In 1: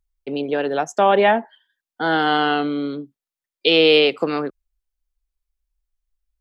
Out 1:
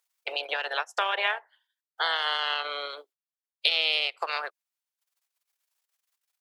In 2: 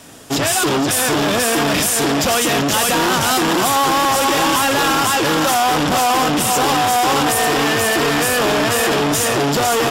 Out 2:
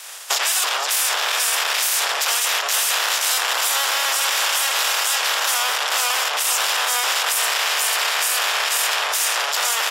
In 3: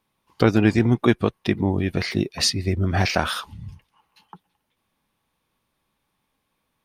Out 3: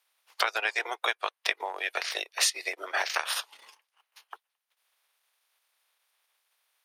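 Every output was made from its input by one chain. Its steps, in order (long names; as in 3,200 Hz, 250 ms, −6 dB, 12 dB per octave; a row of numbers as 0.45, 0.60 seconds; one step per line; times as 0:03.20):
ceiling on every frequency bin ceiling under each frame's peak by 17 dB
downward compressor 3 to 1, threshold −24 dBFS
transient designer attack +2 dB, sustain −11 dB
harmonic generator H 5 −31 dB, 7 −43 dB, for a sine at −4.5 dBFS
Bessel high-pass filter 830 Hz, order 8
normalise the peak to −6 dBFS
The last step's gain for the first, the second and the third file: 0.0, +4.0, 0.0 decibels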